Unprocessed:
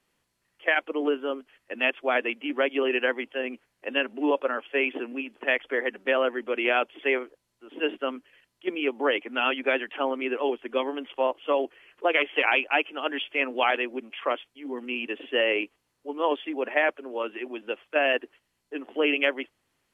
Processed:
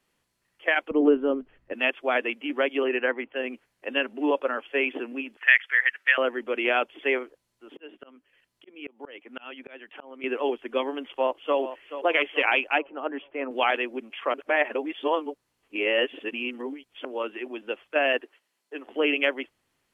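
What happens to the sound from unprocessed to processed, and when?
0.91–1.73 tilt -4.5 dB/oct
2.84–3.36 LPF 2600 Hz 24 dB/oct
5.37–6.18 resonant high-pass 1800 Hz, resonance Q 3
7.06–10.24 auto swell 0.651 s
11.06–11.58 echo throw 0.43 s, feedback 40%, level -11.5 dB
12.78–13.51 LPF 1200 Hz
14.34–17.05 reverse
18.21–18.87 HPF 360 Hz

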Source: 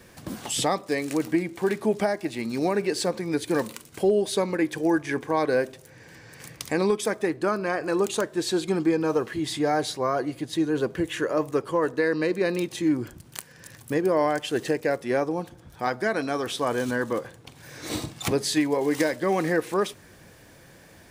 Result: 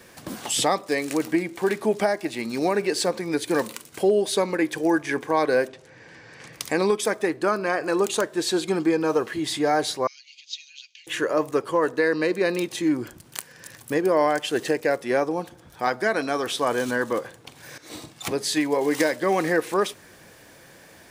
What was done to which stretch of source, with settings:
5.68–6.53 air absorption 93 m
10.07–11.07 Chebyshev band-pass 2400–6600 Hz, order 4
17.78–18.77 fade in, from -15 dB
whole clip: low shelf 190 Hz -10 dB; gain +3.5 dB

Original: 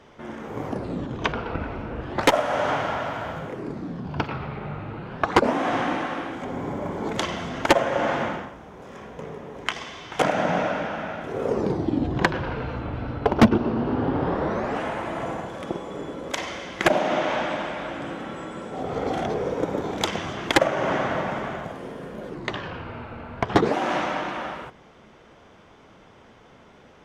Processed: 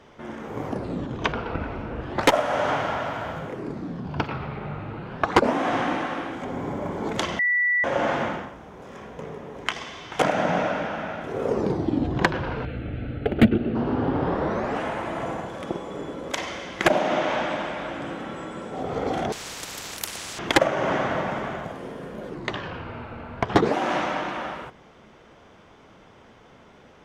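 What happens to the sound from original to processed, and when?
7.39–7.84 bleep 1960 Hz -18.5 dBFS
12.65–13.75 fixed phaser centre 2400 Hz, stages 4
19.32–20.39 spectral compressor 10:1

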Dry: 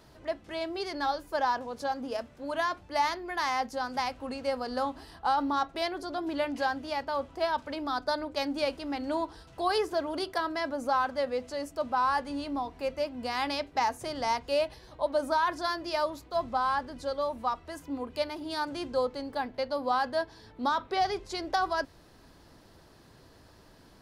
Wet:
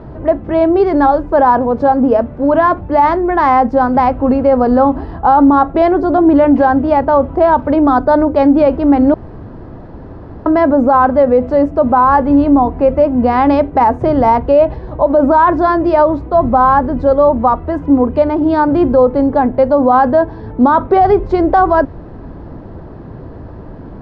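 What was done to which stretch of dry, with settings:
9.14–10.46 room tone
whole clip: LPF 1100 Hz 12 dB/oct; low shelf 470 Hz +8 dB; maximiser +21.5 dB; gain -1 dB

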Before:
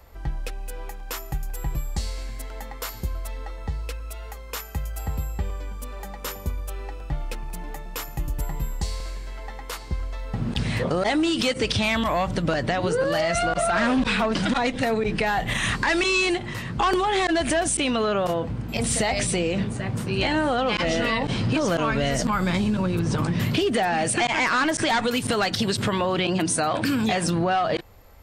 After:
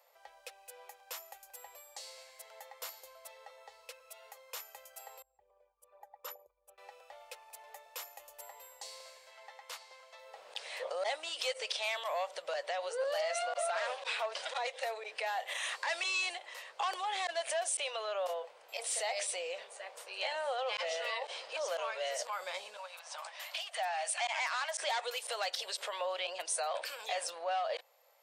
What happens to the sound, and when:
5.22–6.78 formant sharpening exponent 2
9.31–10.19 weighting filter A
22.77–24.78 steep high-pass 620 Hz 48 dB/oct
whole clip: elliptic high-pass 530 Hz, stop band 50 dB; bell 1400 Hz -6.5 dB 1.1 oct; gain -8.5 dB

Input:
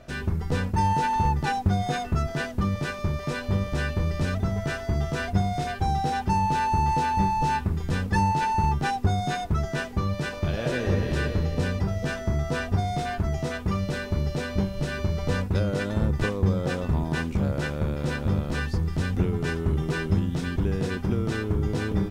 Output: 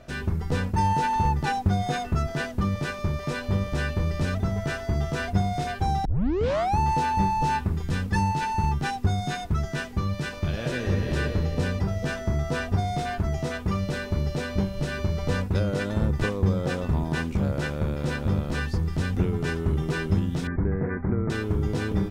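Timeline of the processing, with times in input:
6.05 tape start 0.73 s
7.82–11.07 bell 620 Hz -4 dB 1.8 oct
20.47–21.3 steep low-pass 2200 Hz 96 dB/oct

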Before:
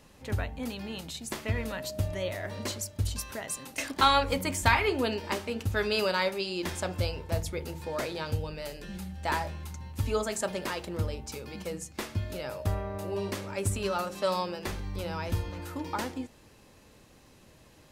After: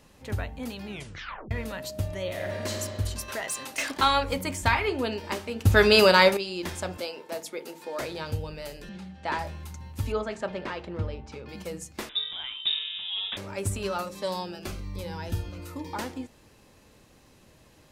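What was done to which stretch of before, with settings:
0.86 tape stop 0.65 s
2.24–2.76 reverb throw, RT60 2.3 s, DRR 0 dB
3.28–3.98 overdrive pedal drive 14 dB, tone 7100 Hz, clips at -20 dBFS
4.53–5.15 high shelf 7700 Hz -5 dB
5.65–6.37 gain +10.5 dB
6.97–8 HPF 250 Hz 24 dB/oct
8.89–9.39 BPF 130–4500 Hz
10.12–11.49 LPF 3100 Hz
12.09–13.37 inverted band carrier 3700 Hz
14.03–15.96 cascading phaser falling 1.2 Hz

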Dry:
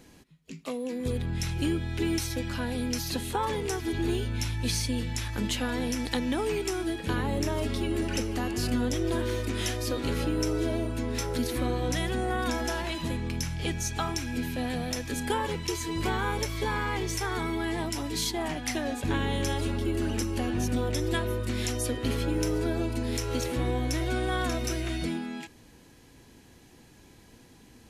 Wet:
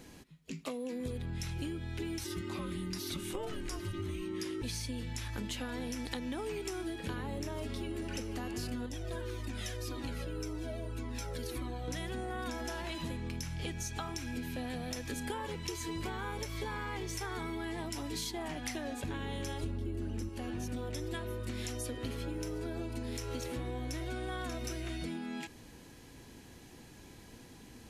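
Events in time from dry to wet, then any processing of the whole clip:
2.24–4.62 frequency shift -430 Hz
8.86–11.88 cascading flanger falling 1.8 Hz
19.63–20.29 low shelf 380 Hz +11.5 dB
whole clip: compressor, threshold -37 dBFS; gain +1 dB

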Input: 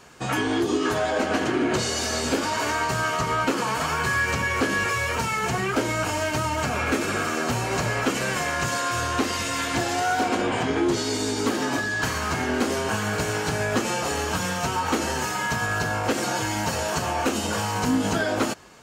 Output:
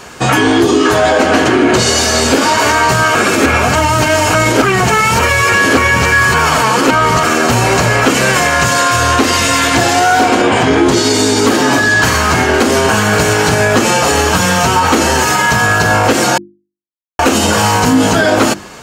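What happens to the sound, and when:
3.15–7.23 reverse
16.38–17.19 mute
whole clip: notches 50/100/150/200/250/300/350 Hz; maximiser +18 dB; gain -1 dB

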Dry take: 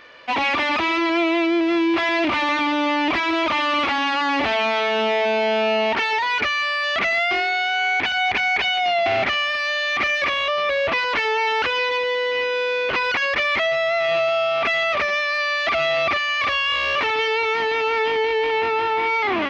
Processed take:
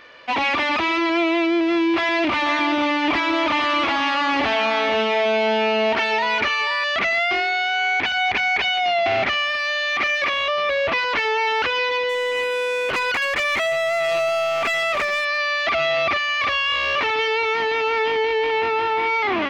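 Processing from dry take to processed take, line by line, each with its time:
1.97–6.84 echo 0.484 s -9 dB
9.58–10.34 low shelf 160 Hz -7.5 dB
12.09–15.25 hard clip -17.5 dBFS

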